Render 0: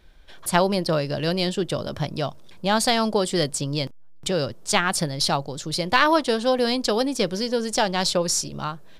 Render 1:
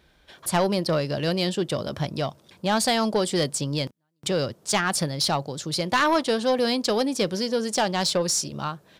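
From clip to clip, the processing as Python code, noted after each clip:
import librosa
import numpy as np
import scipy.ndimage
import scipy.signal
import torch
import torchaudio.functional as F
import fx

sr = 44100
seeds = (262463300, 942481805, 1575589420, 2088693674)

y = scipy.signal.sosfilt(scipy.signal.butter(2, 74.0, 'highpass', fs=sr, output='sos'), x)
y = 10.0 ** (-13.5 / 20.0) * np.tanh(y / 10.0 ** (-13.5 / 20.0))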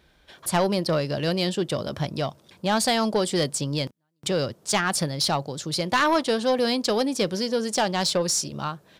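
y = x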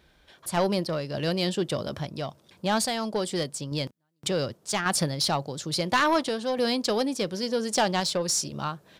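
y = fx.tremolo_random(x, sr, seeds[0], hz=3.5, depth_pct=55)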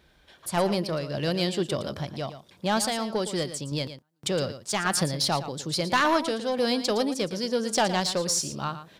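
y = x + 10.0 ** (-12.0 / 20.0) * np.pad(x, (int(114 * sr / 1000.0), 0))[:len(x)]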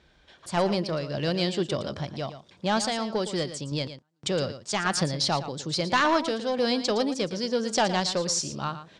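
y = scipy.signal.sosfilt(scipy.signal.butter(4, 7700.0, 'lowpass', fs=sr, output='sos'), x)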